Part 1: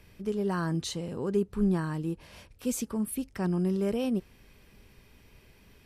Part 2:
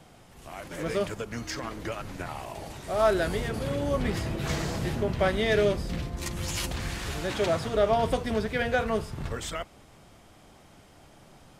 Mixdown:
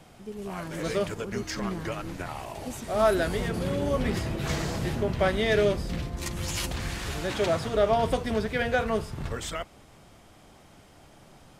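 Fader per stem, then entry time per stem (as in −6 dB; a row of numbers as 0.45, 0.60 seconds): −8.0, +0.5 decibels; 0.00, 0.00 seconds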